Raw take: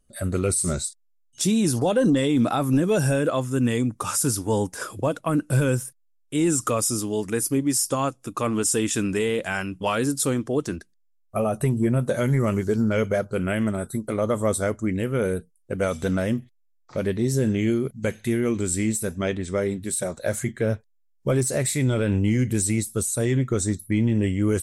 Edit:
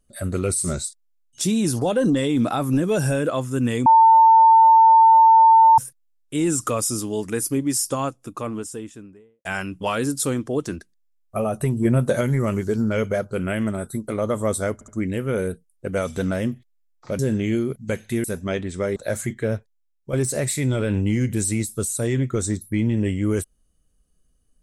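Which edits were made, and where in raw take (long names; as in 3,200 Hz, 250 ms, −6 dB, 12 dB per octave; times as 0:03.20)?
0:03.86–0:05.78: beep over 898 Hz −8.5 dBFS
0:07.80–0:09.45: fade out and dull
0:11.85–0:12.21: clip gain +3.5 dB
0:14.74: stutter 0.07 s, 3 plays
0:17.05–0:17.34: remove
0:18.39–0:18.98: remove
0:19.70–0:20.14: remove
0:20.64–0:21.31: fade out, to −9 dB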